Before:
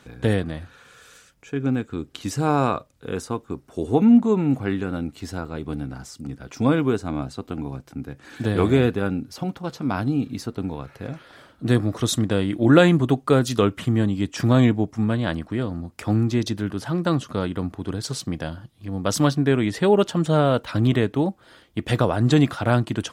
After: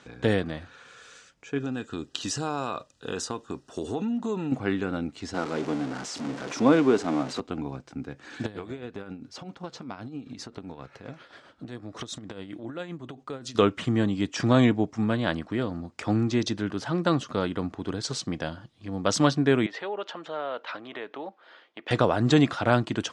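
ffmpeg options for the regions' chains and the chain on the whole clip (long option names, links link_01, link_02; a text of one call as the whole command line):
ffmpeg -i in.wav -filter_complex "[0:a]asettb=1/sr,asplit=3[link_01][link_02][link_03];[link_01]atrim=end=1.584[link_04];[link_02]atrim=start=1.58:end=4.52,asetpts=PTS-STARTPTS,afade=type=in:duration=0.004:curve=qsin,afade=type=out:start_time=2.936:duration=0.004:curve=qsin,asuperstop=centerf=2200:order=20:qfactor=5.7,highshelf=frequency=2300:gain=8.5,acompressor=threshold=-24dB:ratio=5:attack=3.2:release=140:knee=1:detection=peak[link_05];[link_03]atrim=start=4.516[link_06];[link_04][link_05]acrossfade=duration=0.004:curve1=hsin:curve2=qsin[link_07];[link_07][link_06]acrossfade=duration=0.004:curve1=qsin:curve2=hsin,asettb=1/sr,asplit=3[link_08][link_09][link_10];[link_08]atrim=end=5.344[link_11];[link_09]atrim=start=5.34:end=7.4,asetpts=PTS-STARTPTS,afade=type=in:duration=0.004:curve=qsin,afade=type=out:start_time=2.056:duration=0.004:curve=qsin,aeval=exprs='val(0)+0.5*0.0335*sgn(val(0))':channel_layout=same,highpass=210,tiltshelf=frequency=1200:gain=3[link_12];[link_10]atrim=start=7.396[link_13];[link_11][link_12]acrossfade=duration=0.004:curve1=hsin:curve2=qsin[link_14];[link_14][link_13]acrossfade=duration=0.004:curve1=qsin:curve2=hsin,asettb=1/sr,asplit=3[link_15][link_16][link_17];[link_15]atrim=end=8.464[link_18];[link_16]atrim=start=8.46:end=13.55,asetpts=PTS-STARTPTS,afade=type=in:duration=0.004:curve=qsin,afade=type=out:start_time=5.086:duration=0.004:curve=qsin,acompressor=threshold=-28dB:ratio=12:attack=3.2:release=140:knee=1:detection=peak,tremolo=f=7.6:d=0.6[link_19];[link_17]atrim=start=13.546[link_20];[link_18][link_19]acrossfade=duration=0.004:curve1=hsin:curve2=qsin[link_21];[link_21][link_20]acrossfade=duration=0.004:curve1=qsin:curve2=hsin,asettb=1/sr,asplit=3[link_22][link_23][link_24];[link_22]atrim=end=19.664[link_25];[link_23]atrim=start=19.66:end=21.91,asetpts=PTS-STARTPTS,afade=type=in:duration=0.004:curve=qsin,afade=type=out:start_time=2.246:duration=0.004:curve=qsin,acompressor=threshold=-27dB:ratio=2.5:attack=3.2:release=140:knee=1:detection=peak,highpass=520,lowpass=3200[link_26];[link_24]atrim=start=21.906[link_27];[link_25][link_26]acrossfade=duration=0.004:curve1=hsin:curve2=qsin[link_28];[link_28][link_27]acrossfade=duration=0.004:curve1=qsin:curve2=hsin,lowpass=frequency=7500:width=0.5412,lowpass=frequency=7500:width=1.3066,lowshelf=frequency=140:gain=-11" out.wav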